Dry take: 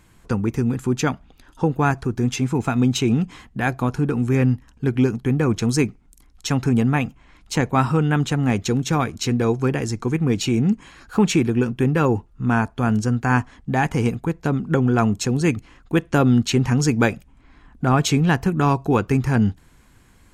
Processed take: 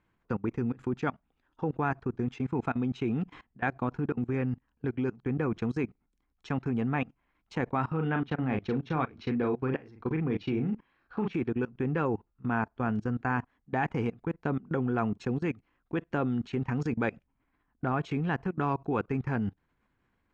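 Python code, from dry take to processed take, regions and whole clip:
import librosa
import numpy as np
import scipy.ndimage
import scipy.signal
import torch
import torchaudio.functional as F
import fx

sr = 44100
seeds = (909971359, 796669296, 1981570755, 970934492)

y = fx.chain(x, sr, fx.savgol(points=15),
    fx.doubler(ms=38.0, db=-6.5), at=(7.91, 11.33))
y = scipy.signal.sosfilt(scipy.signal.butter(2, 2400.0, 'lowpass', fs=sr, output='sos'), y)
y = fx.level_steps(y, sr, step_db=22)
y = fx.low_shelf(y, sr, hz=150.0, db=-8.0)
y = y * 10.0 ** (-4.0 / 20.0)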